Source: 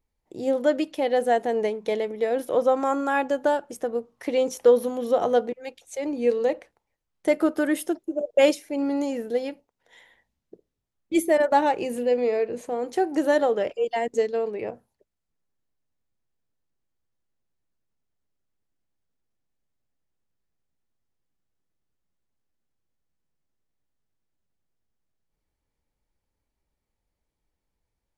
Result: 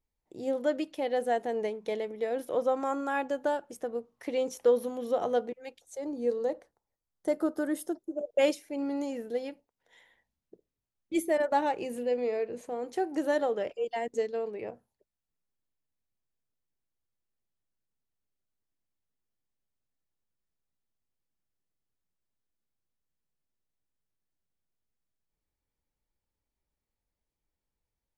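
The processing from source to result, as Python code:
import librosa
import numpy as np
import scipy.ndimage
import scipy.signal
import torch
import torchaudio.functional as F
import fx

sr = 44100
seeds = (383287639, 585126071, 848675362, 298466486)

y = fx.peak_eq(x, sr, hz=2500.0, db=-13.0, octaves=0.74, at=(5.79, 8.17))
y = y * 10.0 ** (-7.0 / 20.0)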